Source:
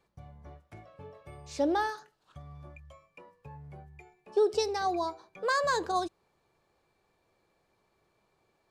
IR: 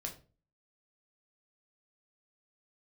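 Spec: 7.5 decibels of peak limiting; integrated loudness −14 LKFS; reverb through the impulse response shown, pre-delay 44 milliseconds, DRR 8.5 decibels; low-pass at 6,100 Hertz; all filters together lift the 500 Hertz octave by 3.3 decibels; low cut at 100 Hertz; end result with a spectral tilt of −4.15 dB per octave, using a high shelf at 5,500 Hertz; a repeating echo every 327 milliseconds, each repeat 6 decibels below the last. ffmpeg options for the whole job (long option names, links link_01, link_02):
-filter_complex "[0:a]highpass=100,lowpass=6100,equalizer=frequency=500:width_type=o:gain=4,highshelf=frequency=5500:gain=6.5,alimiter=limit=-21dB:level=0:latency=1,aecho=1:1:327|654|981|1308|1635|1962:0.501|0.251|0.125|0.0626|0.0313|0.0157,asplit=2[link_01][link_02];[1:a]atrim=start_sample=2205,adelay=44[link_03];[link_02][link_03]afir=irnorm=-1:irlink=0,volume=-7.5dB[link_04];[link_01][link_04]amix=inputs=2:normalize=0,volume=16.5dB"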